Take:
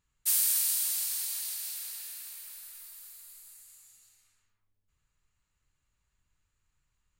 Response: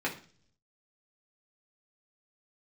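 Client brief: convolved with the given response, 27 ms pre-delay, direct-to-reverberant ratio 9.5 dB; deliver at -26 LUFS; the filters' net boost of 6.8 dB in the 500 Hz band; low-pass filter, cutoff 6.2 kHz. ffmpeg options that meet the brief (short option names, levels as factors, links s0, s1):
-filter_complex "[0:a]lowpass=6200,equalizer=f=500:t=o:g=8.5,asplit=2[s0][s1];[1:a]atrim=start_sample=2205,adelay=27[s2];[s1][s2]afir=irnorm=-1:irlink=0,volume=0.141[s3];[s0][s3]amix=inputs=2:normalize=0,volume=3.76"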